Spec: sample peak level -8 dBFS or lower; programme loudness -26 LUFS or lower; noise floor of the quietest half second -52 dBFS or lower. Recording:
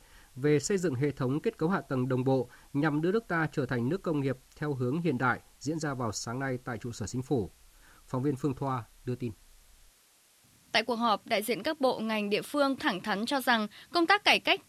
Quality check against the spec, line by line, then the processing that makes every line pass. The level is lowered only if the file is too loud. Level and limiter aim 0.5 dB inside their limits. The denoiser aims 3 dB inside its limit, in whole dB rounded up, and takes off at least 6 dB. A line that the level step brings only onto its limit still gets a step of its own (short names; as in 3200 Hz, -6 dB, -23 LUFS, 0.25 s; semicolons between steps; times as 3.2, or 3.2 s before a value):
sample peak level -9.0 dBFS: OK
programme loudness -30.5 LUFS: OK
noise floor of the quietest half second -64 dBFS: OK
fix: none